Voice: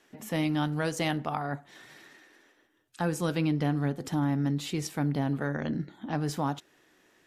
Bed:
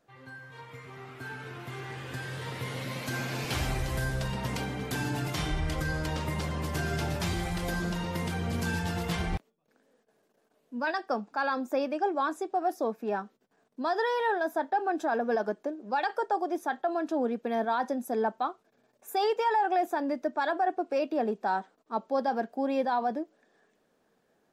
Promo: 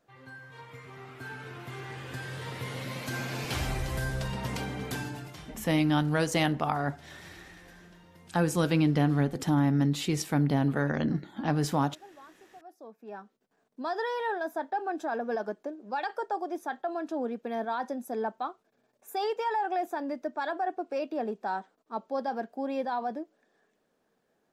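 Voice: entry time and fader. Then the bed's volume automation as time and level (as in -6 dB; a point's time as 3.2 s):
5.35 s, +3.0 dB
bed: 4.91 s -1 dB
5.7 s -23 dB
12.61 s -23 dB
13.49 s -3.5 dB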